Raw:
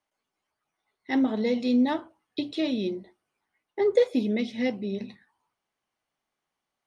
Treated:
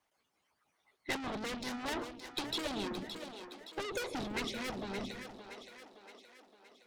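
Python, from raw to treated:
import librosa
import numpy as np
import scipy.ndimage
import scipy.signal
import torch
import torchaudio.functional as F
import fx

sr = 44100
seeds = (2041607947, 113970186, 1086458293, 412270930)

y = fx.tube_stage(x, sr, drive_db=37.0, bias=0.3)
y = fx.echo_split(y, sr, split_hz=320.0, low_ms=158, high_ms=569, feedback_pct=52, wet_db=-8.5)
y = fx.hpss(y, sr, part='harmonic', gain_db=-14)
y = F.gain(torch.from_numpy(y), 9.0).numpy()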